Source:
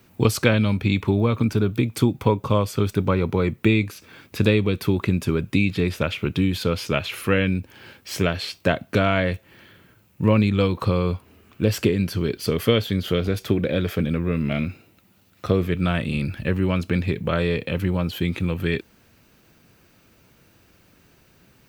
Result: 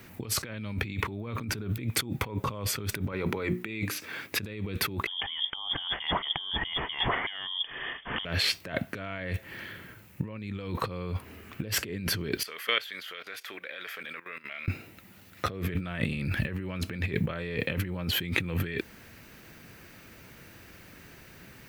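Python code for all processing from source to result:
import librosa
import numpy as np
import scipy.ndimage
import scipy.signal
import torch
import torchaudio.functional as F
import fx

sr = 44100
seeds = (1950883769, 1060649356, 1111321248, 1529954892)

y = fx.chain(x, sr, fx.highpass(hz=230.0, slope=6),
    fx.hum_notches(base_hz=60, count=6), at=(3.12, 4.39))
y = fx.chain(y, sr, fx.highpass(hz=52.0, slope=12),
    fx.freq_invert(carrier_hz=3400), at=(5.07, 8.25))
y = fx.chain(y, sr, fx.highpass(hz=1300.0, slope=12),
    fx.high_shelf(hz=2600.0, db=-7.5),
    fx.level_steps(step_db=16), at=(12.43, 14.68))
y = fx.peak_eq(y, sr, hz=1900.0, db=7.0, octaves=0.63)
y = fx.over_compress(y, sr, threshold_db=-30.0, ratio=-1.0)
y = fx.peak_eq(y, sr, hz=12000.0, db=3.5, octaves=0.32)
y = y * librosa.db_to_amplitude(-3.0)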